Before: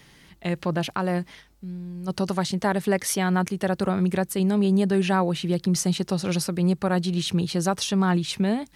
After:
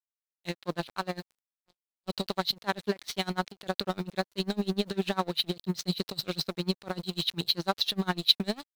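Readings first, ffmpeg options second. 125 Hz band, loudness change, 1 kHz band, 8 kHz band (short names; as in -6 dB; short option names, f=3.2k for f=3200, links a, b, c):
-11.5 dB, -6.5 dB, -6.5 dB, -13.0 dB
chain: -af "lowpass=f=4k:t=q:w=6.6,lowshelf=f=150:g=-4,aeval=exprs='sgn(val(0))*max(abs(val(0))-0.0282,0)':c=same,acrusher=bits=9:dc=4:mix=0:aa=0.000001,aeval=exprs='val(0)*pow(10,-27*(0.5-0.5*cos(2*PI*10*n/s))/20)':c=same"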